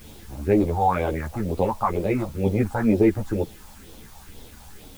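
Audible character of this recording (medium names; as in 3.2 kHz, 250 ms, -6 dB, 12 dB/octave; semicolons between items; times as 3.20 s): phasing stages 4, 2.1 Hz, lowest notch 360–1800 Hz; a quantiser's noise floor 10-bit, dither triangular; a shimmering, thickened sound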